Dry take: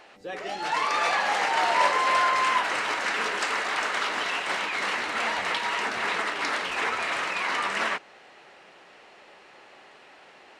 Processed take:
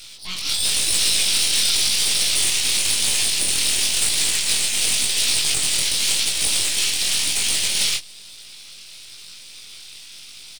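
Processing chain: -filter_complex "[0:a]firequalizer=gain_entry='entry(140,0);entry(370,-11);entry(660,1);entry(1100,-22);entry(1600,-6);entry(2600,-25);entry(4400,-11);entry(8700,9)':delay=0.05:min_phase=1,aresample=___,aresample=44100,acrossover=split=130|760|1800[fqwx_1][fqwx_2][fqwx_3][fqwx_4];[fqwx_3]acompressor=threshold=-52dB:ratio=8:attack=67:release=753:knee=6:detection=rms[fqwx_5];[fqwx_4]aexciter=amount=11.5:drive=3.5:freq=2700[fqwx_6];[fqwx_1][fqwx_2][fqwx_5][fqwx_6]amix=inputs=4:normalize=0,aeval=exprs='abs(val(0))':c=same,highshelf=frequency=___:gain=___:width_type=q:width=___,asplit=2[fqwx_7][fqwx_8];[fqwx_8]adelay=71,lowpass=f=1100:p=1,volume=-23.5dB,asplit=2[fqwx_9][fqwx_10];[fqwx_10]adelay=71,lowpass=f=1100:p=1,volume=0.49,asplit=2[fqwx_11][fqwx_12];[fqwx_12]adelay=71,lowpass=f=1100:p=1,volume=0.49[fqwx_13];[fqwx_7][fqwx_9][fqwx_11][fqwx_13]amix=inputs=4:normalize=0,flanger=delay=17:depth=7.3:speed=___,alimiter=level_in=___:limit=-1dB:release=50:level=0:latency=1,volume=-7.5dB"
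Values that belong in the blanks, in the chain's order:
11025, 1800, 13.5, 1.5, 0.95, 16dB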